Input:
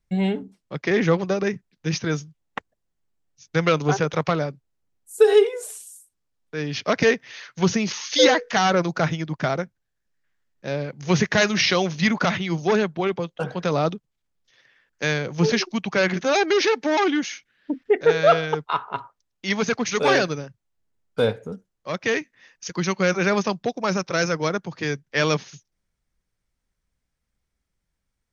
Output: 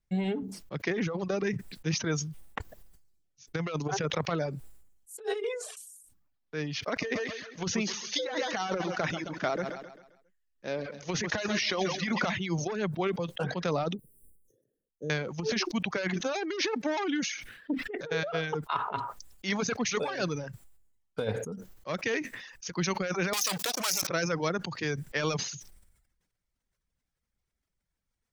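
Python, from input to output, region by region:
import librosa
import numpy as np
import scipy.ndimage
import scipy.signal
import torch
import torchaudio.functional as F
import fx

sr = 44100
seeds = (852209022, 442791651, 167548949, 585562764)

y = fx.chain(x, sr, fx.cheby1_highpass(hz=430.0, order=3),
    fx.env_lowpass(base_hz=2500.0, full_db=-11.5), at=(5.17, 5.77))
y = fx.chain(y, sr, fx.peak_eq(hz=140.0, db=-10.0, octaves=0.56),
    fx.echo_feedback(ms=133, feedback_pct=49, wet_db=-11.0), at=(6.87, 12.32))
y = fx.chain(y, sr, fx.ellip_bandstop(low_hz=460.0, high_hz=9400.0, order=3, stop_db=40),
    fx.low_shelf(hz=150.0, db=-8.5), at=(13.95, 15.1))
y = fx.chain(y, sr, fx.leveller(passes=5),
    fx.differentiator(),
    fx.env_flatten(amount_pct=70), at=(23.33, 24.07))
y = fx.over_compress(y, sr, threshold_db=-21.0, ratio=-0.5)
y = fx.dereverb_blind(y, sr, rt60_s=0.65)
y = fx.sustainer(y, sr, db_per_s=60.0)
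y = y * librosa.db_to_amplitude(-7.5)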